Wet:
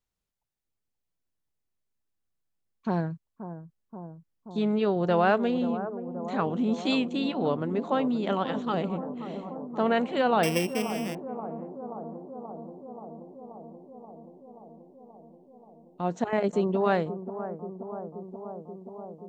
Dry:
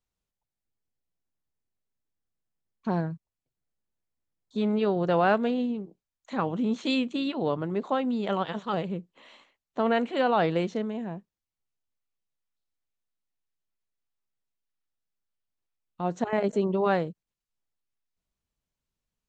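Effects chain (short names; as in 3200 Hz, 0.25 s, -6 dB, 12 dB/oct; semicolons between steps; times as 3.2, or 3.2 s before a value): 10.43–11.15 sample sorter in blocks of 16 samples; analogue delay 0.53 s, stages 4096, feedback 78%, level -11.5 dB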